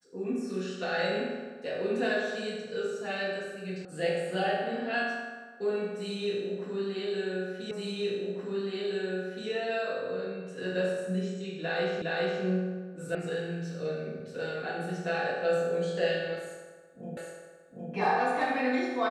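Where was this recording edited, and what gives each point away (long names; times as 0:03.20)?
0:03.85: cut off before it has died away
0:07.71: the same again, the last 1.77 s
0:12.02: the same again, the last 0.41 s
0:13.15: cut off before it has died away
0:17.17: the same again, the last 0.76 s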